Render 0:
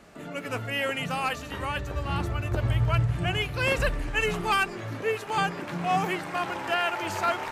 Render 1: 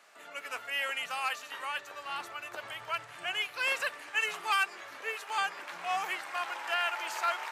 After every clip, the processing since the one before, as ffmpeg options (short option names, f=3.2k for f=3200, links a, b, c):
-af "highpass=930,volume=-2.5dB"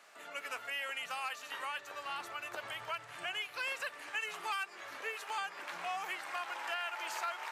-af "acompressor=threshold=-37dB:ratio=3"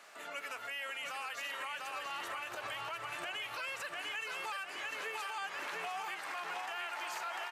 -af "aecho=1:1:698|1396|2094|2792|3490:0.596|0.22|0.0815|0.0302|0.0112,alimiter=level_in=11dB:limit=-24dB:level=0:latency=1:release=81,volume=-11dB,volume=3.5dB"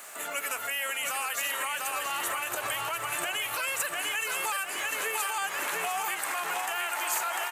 -af "aexciter=amount=5.6:drive=4.1:freq=7k,volume=8.5dB"